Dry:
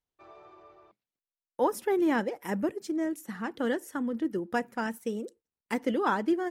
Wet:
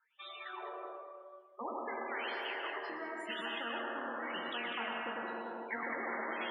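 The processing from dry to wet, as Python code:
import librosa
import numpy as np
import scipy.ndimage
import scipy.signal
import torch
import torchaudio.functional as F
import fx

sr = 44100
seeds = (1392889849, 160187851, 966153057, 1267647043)

y = fx.dereverb_blind(x, sr, rt60_s=1.5)
y = fx.pre_emphasis(y, sr, coefficient=0.97, at=(2.0, 2.73))
y = fx.dereverb_blind(y, sr, rt60_s=0.53)
y = fx.high_shelf(y, sr, hz=5300.0, db=-9.5)
y = fx.resonator_bank(y, sr, root=39, chord='minor', decay_s=0.45)
y = fx.small_body(y, sr, hz=(210.0, 350.0, 1900.0), ring_ms=30, db=15, at=(5.22, 5.83))
y = fx.wah_lfo(y, sr, hz=0.95, low_hz=490.0, high_hz=3500.0, q=9.8)
y = fx.spec_topn(y, sr, count=32)
y = fx.echo_alternate(y, sr, ms=100, hz=1400.0, feedback_pct=53, wet_db=-5.5)
y = fx.rev_plate(y, sr, seeds[0], rt60_s=1.5, hf_ratio=0.7, predelay_ms=105, drr_db=8.5)
y = fx.spectral_comp(y, sr, ratio=10.0)
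y = y * librosa.db_to_amplitude(13.5)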